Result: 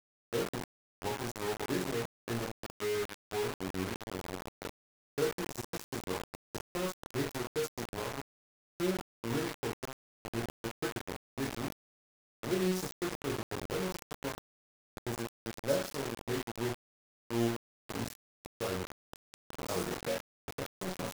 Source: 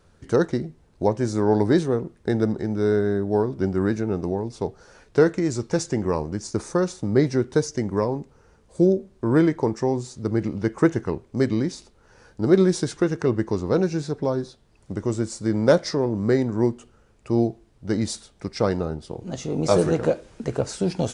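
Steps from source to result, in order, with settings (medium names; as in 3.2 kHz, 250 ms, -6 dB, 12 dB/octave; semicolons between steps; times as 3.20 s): chord resonator F#2 major, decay 0.51 s; word length cut 6-bit, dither none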